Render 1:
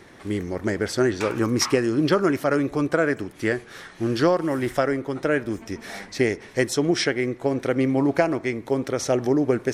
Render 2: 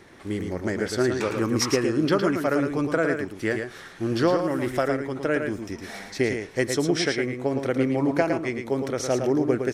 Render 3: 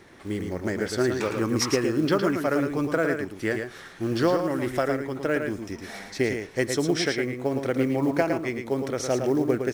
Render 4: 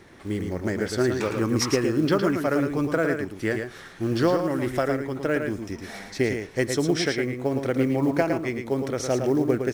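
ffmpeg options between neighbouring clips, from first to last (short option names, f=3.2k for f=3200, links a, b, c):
-af "aecho=1:1:111:0.501,volume=-2.5dB"
-af "acrusher=bits=8:mode=log:mix=0:aa=0.000001,volume=-1dB"
-af "lowshelf=f=200:g=4"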